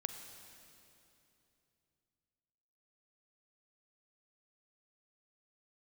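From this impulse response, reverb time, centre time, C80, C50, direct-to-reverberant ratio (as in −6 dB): 2.9 s, 43 ms, 8.0 dB, 7.0 dB, 6.5 dB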